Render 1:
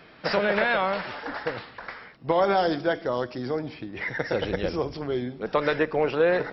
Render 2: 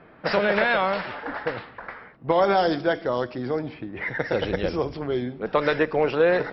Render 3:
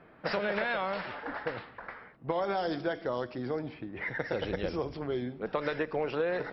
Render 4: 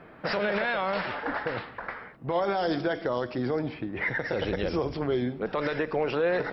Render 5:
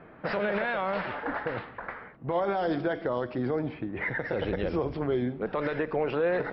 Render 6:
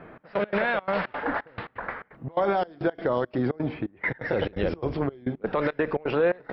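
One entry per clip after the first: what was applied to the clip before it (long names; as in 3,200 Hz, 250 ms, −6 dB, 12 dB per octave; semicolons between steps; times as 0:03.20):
low-pass that shuts in the quiet parts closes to 1,400 Hz, open at −18.5 dBFS; level +2 dB
downward compressor, threshold −21 dBFS, peak gain reduction 6.5 dB; level −6 dB
brickwall limiter −25 dBFS, peak gain reduction 8.5 dB; level +7 dB
high-frequency loss of the air 270 metres
gate pattern "xx..x.xxx.xx.x" 171 BPM −24 dB; level +4.5 dB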